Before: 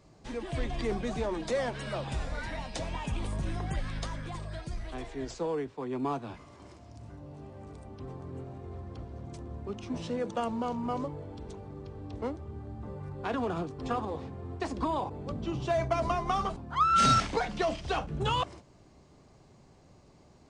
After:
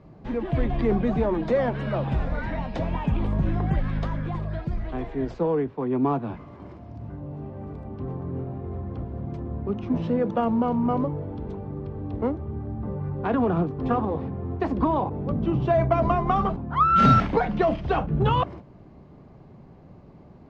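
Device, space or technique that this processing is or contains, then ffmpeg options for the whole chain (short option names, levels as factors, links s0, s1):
phone in a pocket: -af "lowpass=3300,equalizer=f=180:t=o:w=1.1:g=5,highshelf=f=2400:g=-12,volume=2.51"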